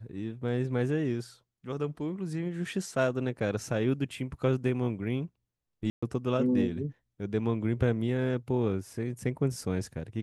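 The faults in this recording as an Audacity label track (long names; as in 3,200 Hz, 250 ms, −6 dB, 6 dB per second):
5.900000	6.030000	drop-out 125 ms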